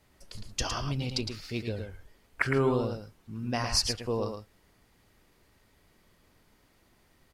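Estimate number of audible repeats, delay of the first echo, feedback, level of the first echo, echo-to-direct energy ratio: 1, 110 ms, repeats not evenly spaced, −6.5 dB, −6.5 dB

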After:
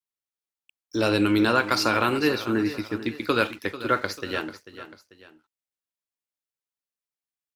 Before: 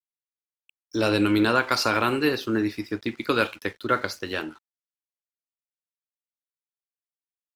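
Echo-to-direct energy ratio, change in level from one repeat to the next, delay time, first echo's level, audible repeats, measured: −13.0 dB, −7.0 dB, 442 ms, −14.0 dB, 2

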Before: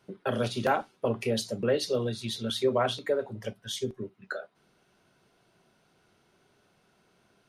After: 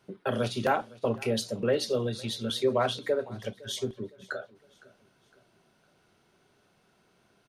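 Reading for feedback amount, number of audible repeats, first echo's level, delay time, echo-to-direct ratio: 43%, 2, −22.0 dB, 510 ms, −21.0 dB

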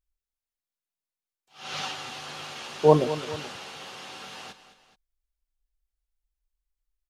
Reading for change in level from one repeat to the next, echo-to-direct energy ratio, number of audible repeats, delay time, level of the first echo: −5.5 dB, −12.5 dB, 2, 214 ms, −13.5 dB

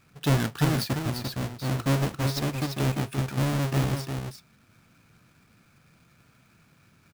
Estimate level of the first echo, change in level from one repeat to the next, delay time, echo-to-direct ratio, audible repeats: −6.0 dB, repeats not evenly spaced, 345 ms, −6.0 dB, 1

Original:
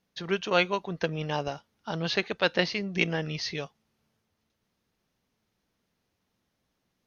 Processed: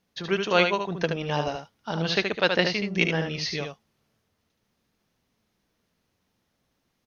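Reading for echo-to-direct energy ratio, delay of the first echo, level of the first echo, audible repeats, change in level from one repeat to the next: −5.5 dB, 74 ms, −5.5 dB, 1, repeats not evenly spaced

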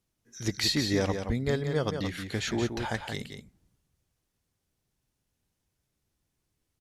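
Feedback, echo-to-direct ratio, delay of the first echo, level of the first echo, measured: repeats not evenly spaced, −7.0 dB, 176 ms, −7.0 dB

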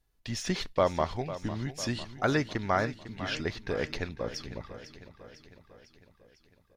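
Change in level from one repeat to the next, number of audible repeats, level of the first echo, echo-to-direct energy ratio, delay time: −4.5 dB, 5, −13.5 dB, −11.5 dB, 501 ms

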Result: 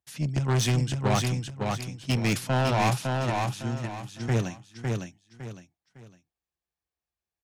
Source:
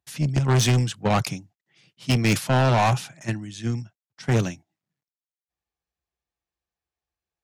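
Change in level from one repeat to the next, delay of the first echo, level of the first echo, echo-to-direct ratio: −10.0 dB, 557 ms, −3.5 dB, −3.0 dB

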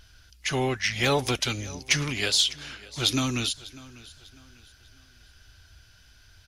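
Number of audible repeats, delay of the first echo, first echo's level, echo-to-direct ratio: 2, 597 ms, −20.0 dB, −19.5 dB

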